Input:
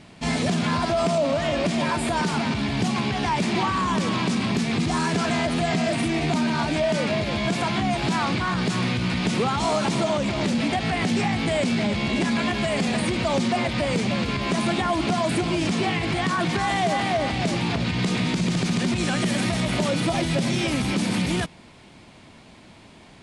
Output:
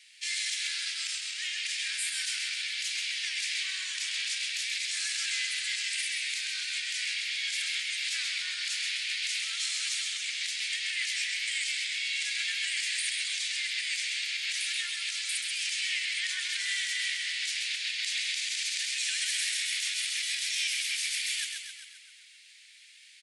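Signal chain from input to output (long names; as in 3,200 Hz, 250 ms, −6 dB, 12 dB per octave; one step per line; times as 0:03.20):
Butterworth high-pass 1,800 Hz 48 dB per octave
high-shelf EQ 3,100 Hz +9 dB
echo with shifted repeats 132 ms, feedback 56%, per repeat −31 Hz, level −5 dB
level −6 dB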